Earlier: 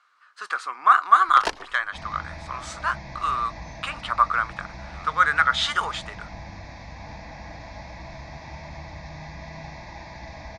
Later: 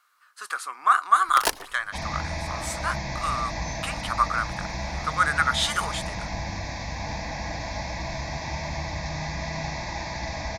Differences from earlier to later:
speech -4.0 dB; second sound +7.0 dB; master: remove air absorption 120 m

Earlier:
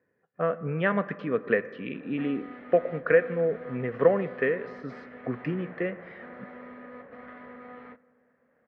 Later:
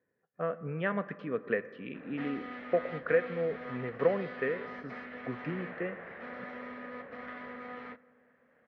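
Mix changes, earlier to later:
speech -6.5 dB; background: remove LPF 1400 Hz 6 dB/oct

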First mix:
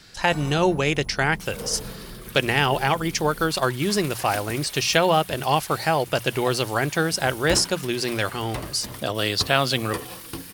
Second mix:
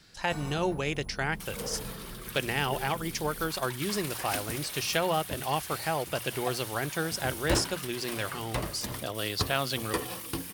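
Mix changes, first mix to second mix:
speech -9.0 dB; first sound -4.0 dB

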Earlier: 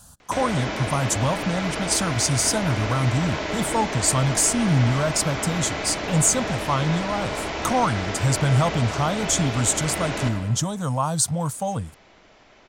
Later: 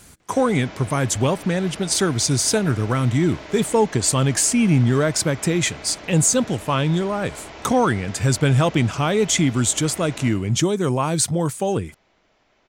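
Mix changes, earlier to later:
speech: remove fixed phaser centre 900 Hz, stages 4; background -10.0 dB

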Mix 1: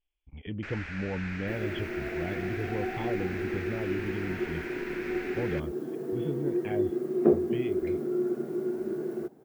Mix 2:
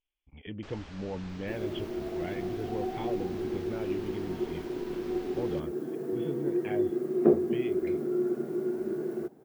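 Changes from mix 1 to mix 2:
speech: add low shelf 200 Hz -8 dB; first sound: add band shelf 1900 Hz -15.5 dB 1.1 oct

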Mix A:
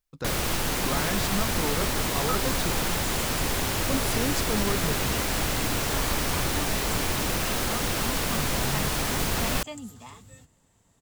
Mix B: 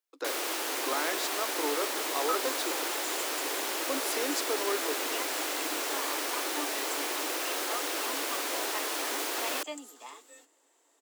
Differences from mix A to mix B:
first sound -4.0 dB; master: add steep high-pass 290 Hz 72 dB/oct

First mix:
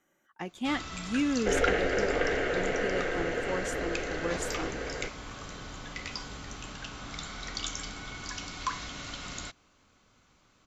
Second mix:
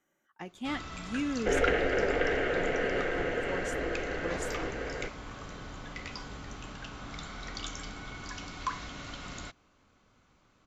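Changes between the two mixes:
speech -5.5 dB; first sound: add high shelf 3000 Hz -8 dB; reverb: on, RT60 0.50 s

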